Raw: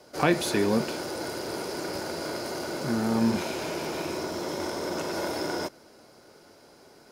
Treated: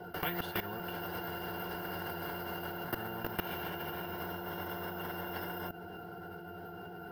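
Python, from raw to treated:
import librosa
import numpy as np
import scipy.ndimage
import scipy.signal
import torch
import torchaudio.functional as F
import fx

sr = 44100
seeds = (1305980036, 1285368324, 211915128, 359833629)

y = fx.peak_eq(x, sr, hz=1400.0, db=5.0, octaves=2.2)
y = fx.octave_resonator(y, sr, note='F', decay_s=0.18)
y = np.repeat(scipy.signal.resample_poly(y, 1, 3), 3)[:len(y)]
y = y + 0.61 * np.pad(y, (int(6.7 * sr / 1000.0), 0))[:len(y)]
y = fx.level_steps(y, sr, step_db=18)
y = fx.high_shelf(y, sr, hz=2800.0, db=-6.0)
y = fx.spectral_comp(y, sr, ratio=4.0)
y = y * 10.0 ** (11.0 / 20.0)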